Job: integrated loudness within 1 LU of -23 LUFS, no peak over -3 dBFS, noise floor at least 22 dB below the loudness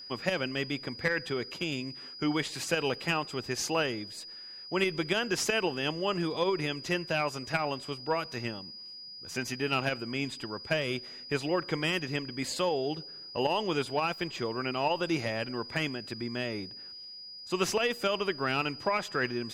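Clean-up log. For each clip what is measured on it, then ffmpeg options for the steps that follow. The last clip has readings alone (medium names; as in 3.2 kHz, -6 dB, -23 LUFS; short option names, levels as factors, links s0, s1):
steady tone 4.9 kHz; tone level -43 dBFS; loudness -31.5 LUFS; peak level -15.0 dBFS; loudness target -23.0 LUFS
-> -af "bandreject=f=4900:w=30"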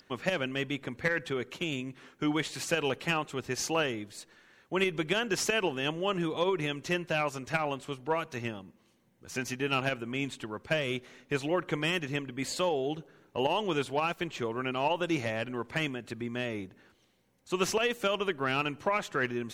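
steady tone not found; loudness -32.0 LUFS; peak level -15.0 dBFS; loudness target -23.0 LUFS
-> -af "volume=2.82"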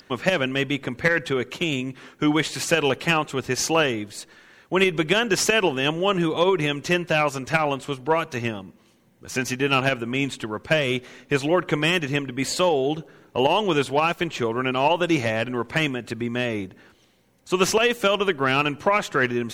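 loudness -23.0 LUFS; peak level -6.0 dBFS; noise floor -58 dBFS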